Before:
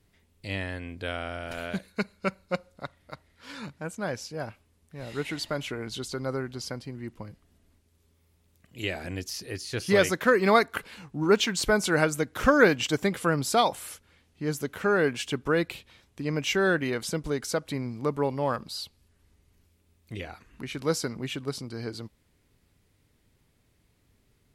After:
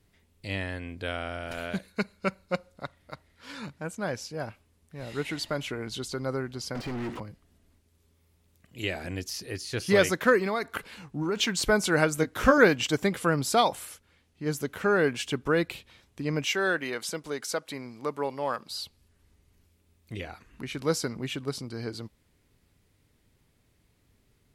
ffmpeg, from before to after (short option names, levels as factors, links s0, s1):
-filter_complex "[0:a]asettb=1/sr,asplit=3[s0][s1][s2];[s0]atrim=end=6.754[s3];[s1]atrim=start=6.75:end=7.2,asetpts=PTS-STARTPTS,afade=t=in:d=0.004:c=qsin,afade=t=out:st=0.446:d=0.004:c=qsin,asplit=2[s4][s5];[s5]highpass=f=720:p=1,volume=89.1,asoftclip=type=tanh:threshold=0.0501[s6];[s4][s6]amix=inputs=2:normalize=0,lowpass=f=1300:p=1,volume=0.501[s7];[s2]atrim=start=7.196[s8];[s3][s7]acrossfade=d=0.004:c1=hsin:c2=qsin[s9];[s9][s8]acrossfade=d=0.004:c1=qsin:c2=hsin,asplit=3[s10][s11][s12];[s10]afade=t=out:st=10.39:d=0.02[s13];[s11]acompressor=threshold=0.0562:ratio=5:attack=3.2:release=140:knee=1:detection=peak,afade=t=in:st=10.39:d=0.02,afade=t=out:st=11.35:d=0.02[s14];[s12]afade=t=in:st=11.35:d=0.02[s15];[s13][s14][s15]amix=inputs=3:normalize=0,asettb=1/sr,asplit=3[s16][s17][s18];[s16]atrim=end=12.164[s19];[s17]atrim=start=12.16:end=12.58,asetpts=PTS-STARTPTS,afade=t=in:d=0.004:c=qsin,afade=t=out:st=0.416:d=0.004:c=qsin,asplit=2[s20][s21];[s21]adelay=19,volume=0.473[s22];[s20][s22]amix=inputs=2:normalize=0,atrim=end_sample=18522[s23];[s18]atrim=start=12.576[s24];[s19][s23]acrossfade=d=0.004:c1=hsin:c2=qsin[s25];[s25][s24]acrossfade=d=0.004:c1=qsin:c2=hsin,asettb=1/sr,asplit=3[s26][s27][s28];[s26]atrim=end=16.454[s29];[s27]atrim=start=16.45:end=18.7,asetpts=PTS-STARTPTS,afade=t=in:d=0.004:c=qsin,afade=t=out:st=2.246:d=0.004:c=qsin,highpass=f=530:p=1[s30];[s28]atrim=start=18.696[s31];[s29][s30]acrossfade=d=0.004:c1=hsin:c2=qsin[s32];[s32][s31]acrossfade=d=0.004:c1=qsin:c2=hsin,asplit=3[s33][s34][s35];[s33]atrim=end=13.852[s36];[s34]atrim=start=13.848:end=14.462,asetpts=PTS-STARTPTS,volume=0.708[s37];[s35]atrim=start=14.458[s38];[s36][s37]acrossfade=d=0.004:c1=hsin:c2=hsin[s39];[s39][s38]acrossfade=d=0.004:c1=hsin:c2=hsin"